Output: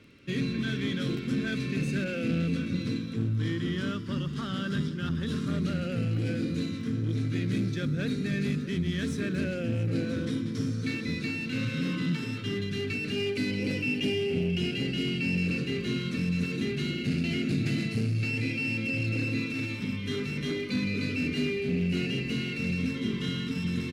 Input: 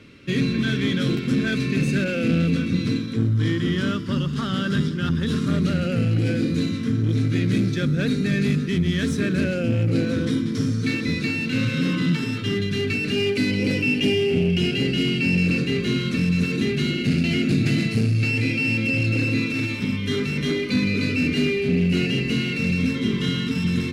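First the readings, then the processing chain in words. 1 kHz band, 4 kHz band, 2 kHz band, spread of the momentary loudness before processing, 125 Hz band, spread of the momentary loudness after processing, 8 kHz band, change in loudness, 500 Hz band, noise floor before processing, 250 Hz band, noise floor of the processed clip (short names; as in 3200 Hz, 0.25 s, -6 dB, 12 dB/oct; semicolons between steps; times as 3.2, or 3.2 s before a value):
-8.0 dB, -8.0 dB, -8.0 dB, 3 LU, -8.0 dB, 3 LU, -8.0 dB, -8.0 dB, -8.0 dB, -27 dBFS, -8.0 dB, -35 dBFS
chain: crackle 11/s -39 dBFS; on a send: echo 0.67 s -17.5 dB; on the sum: gain -8 dB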